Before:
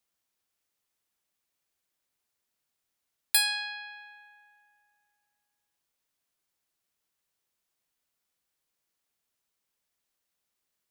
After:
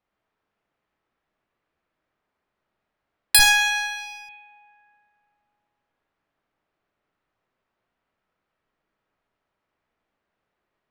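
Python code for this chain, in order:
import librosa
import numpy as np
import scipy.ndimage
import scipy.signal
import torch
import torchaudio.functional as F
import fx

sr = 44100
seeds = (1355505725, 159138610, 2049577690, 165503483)

y = fx.rev_freeverb(x, sr, rt60_s=1.9, hf_ratio=0.55, predelay_ms=10, drr_db=-1.0)
y = fx.env_lowpass(y, sr, base_hz=1700.0, full_db=-35.0)
y = fx.running_max(y, sr, window=5, at=(3.39, 4.29))
y = F.gain(torch.from_numpy(y), 9.0).numpy()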